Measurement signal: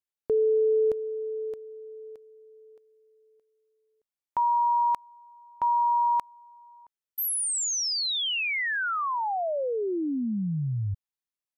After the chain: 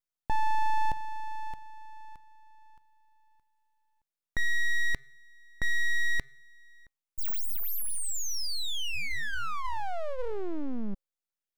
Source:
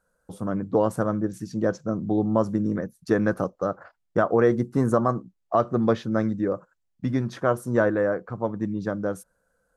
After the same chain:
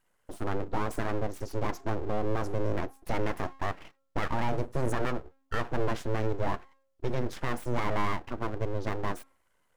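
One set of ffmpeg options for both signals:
-af "alimiter=limit=0.141:level=0:latency=1:release=34,bandreject=f=269.9:t=h:w=4,bandreject=f=539.8:t=h:w=4,bandreject=f=809.7:t=h:w=4,bandreject=f=1079.6:t=h:w=4,bandreject=f=1349.5:t=h:w=4,aeval=exprs='abs(val(0))':c=same"

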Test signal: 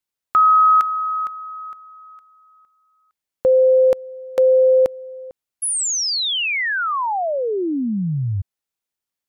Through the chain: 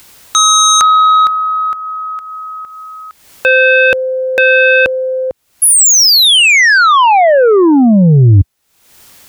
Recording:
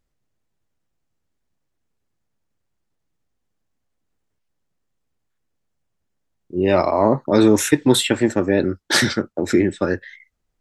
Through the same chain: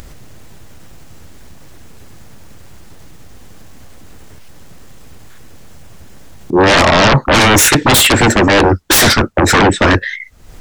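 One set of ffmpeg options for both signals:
-af "acompressor=mode=upward:threshold=0.02:ratio=2.5:attack=1.1:release=318:knee=2.83:detection=peak,aeval=exprs='0.891*sin(PI/2*8.91*val(0)/0.891)':c=same,equalizer=f=74:w=0.88:g=4,volume=0.596"

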